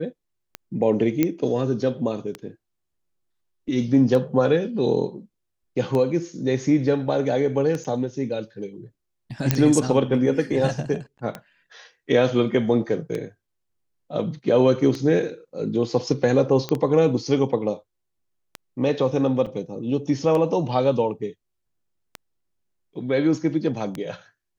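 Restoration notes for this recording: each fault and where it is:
scratch tick 33 1/3 rpm −15 dBFS
0:01.23: click −7 dBFS
0:07.84–0:07.85: drop-out 7.6 ms
0:09.51: click −3 dBFS
0:16.69: click −12 dBFS
0:19.46–0:19.47: drop-out 5.4 ms

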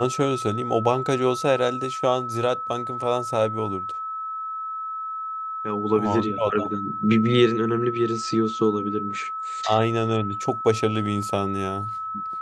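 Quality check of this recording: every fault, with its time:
whistle 1,300 Hz −28 dBFS

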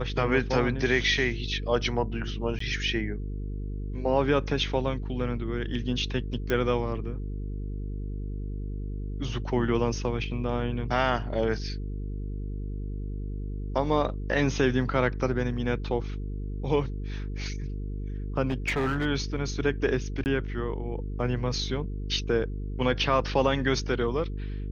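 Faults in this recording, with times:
mains buzz 50 Hz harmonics 9 −33 dBFS
0:02.59–0:02.60: drop-out 14 ms
0:06.50: click −15 dBFS
0:18.48–0:19.06: clipping −22.5 dBFS
0:20.24–0:20.26: drop-out 19 ms

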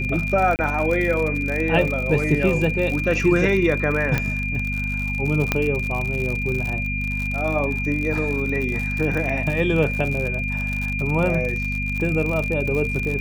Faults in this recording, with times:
surface crackle 63 per second −25 dBFS
mains hum 50 Hz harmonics 5 −27 dBFS
whistle 2,400 Hz −26 dBFS
0:00.56–0:00.59: drop-out 29 ms
0:04.18: click −8 dBFS
0:05.52: click −5 dBFS

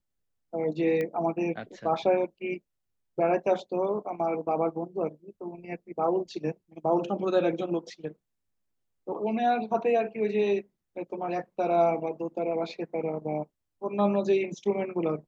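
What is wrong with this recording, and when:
0:01.01: click −20 dBFS

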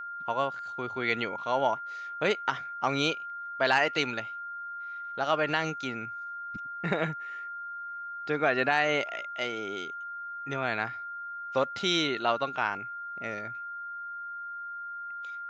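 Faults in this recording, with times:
whistle 1,400 Hz −36 dBFS

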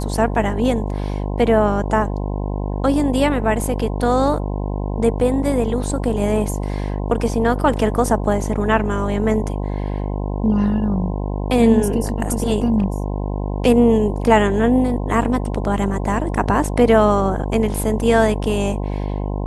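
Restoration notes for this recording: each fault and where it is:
mains buzz 50 Hz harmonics 21 −23 dBFS

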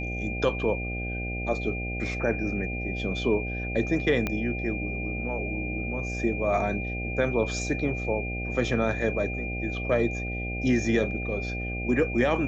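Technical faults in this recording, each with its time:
mains buzz 60 Hz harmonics 13 −33 dBFS
whistle 2,400 Hz −34 dBFS
0:04.27: click −14 dBFS

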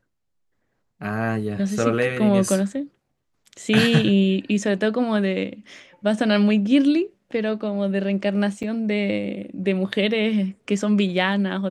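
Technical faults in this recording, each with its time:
0:08.63–0:08.64: drop-out 6.2 ms

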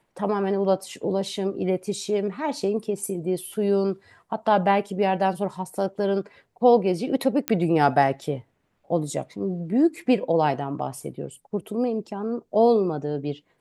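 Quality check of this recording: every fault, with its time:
0:07.48: click −7 dBFS

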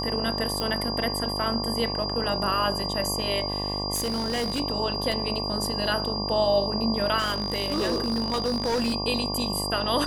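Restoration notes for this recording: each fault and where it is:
mains buzz 50 Hz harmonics 23 −32 dBFS
whistle 4,800 Hz −30 dBFS
0:00.60: click −14 dBFS
0:03.94–0:04.61: clipping −23.5 dBFS
0:05.12: drop-out 2.4 ms
0:07.18–0:08.94: clipping −21.5 dBFS

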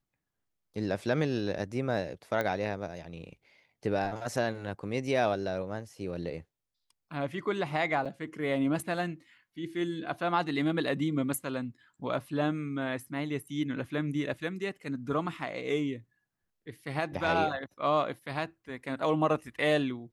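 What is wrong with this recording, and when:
0:02.41: click −18 dBFS
0:08.05–0:08.06: drop-out 6.3 ms

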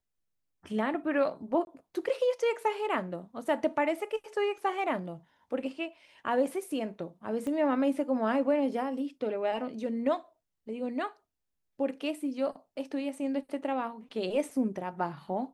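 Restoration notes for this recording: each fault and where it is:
0:01.65–0:01.67: drop-out 21 ms
0:07.47: click −25 dBFS

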